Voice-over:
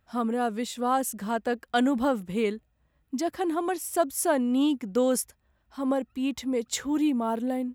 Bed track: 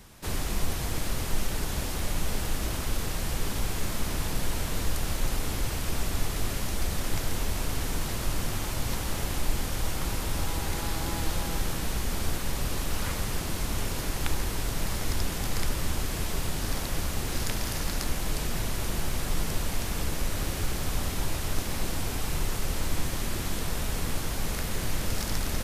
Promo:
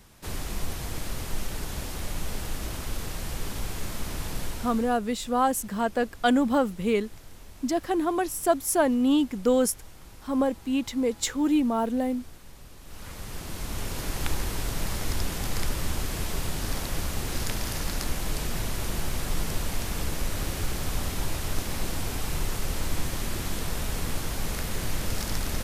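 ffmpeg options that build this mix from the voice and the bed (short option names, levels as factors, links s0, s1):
-filter_complex "[0:a]adelay=4500,volume=1.26[s0];[1:a]volume=5.62,afade=t=out:st=4.42:d=0.56:silence=0.177828,afade=t=in:st=12.81:d=1.39:silence=0.125893[s1];[s0][s1]amix=inputs=2:normalize=0"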